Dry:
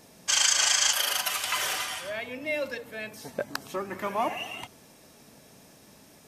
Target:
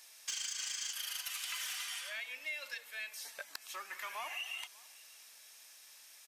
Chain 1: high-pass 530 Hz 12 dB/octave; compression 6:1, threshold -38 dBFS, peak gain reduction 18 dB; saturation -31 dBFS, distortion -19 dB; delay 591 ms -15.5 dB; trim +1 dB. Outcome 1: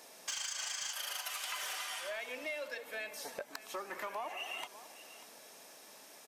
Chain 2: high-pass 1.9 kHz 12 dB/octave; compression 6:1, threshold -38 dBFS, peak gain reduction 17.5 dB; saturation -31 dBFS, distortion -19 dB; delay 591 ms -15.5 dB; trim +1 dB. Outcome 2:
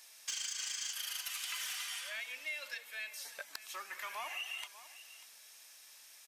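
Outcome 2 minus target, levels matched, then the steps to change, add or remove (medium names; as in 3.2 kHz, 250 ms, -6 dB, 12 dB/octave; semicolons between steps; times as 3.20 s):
echo-to-direct +9 dB
change: delay 591 ms -24.5 dB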